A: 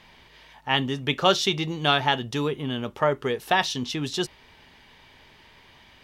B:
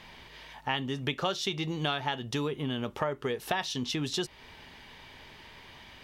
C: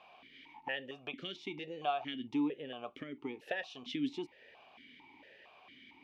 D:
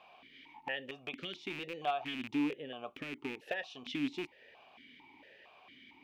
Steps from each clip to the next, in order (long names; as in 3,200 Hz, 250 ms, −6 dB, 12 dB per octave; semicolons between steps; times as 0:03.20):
downward compressor 4 to 1, threshold −32 dBFS, peak gain reduction 15.5 dB; level +2.5 dB
formant filter that steps through the vowels 4.4 Hz; level +4.5 dB
loose part that buzzes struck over −52 dBFS, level −32 dBFS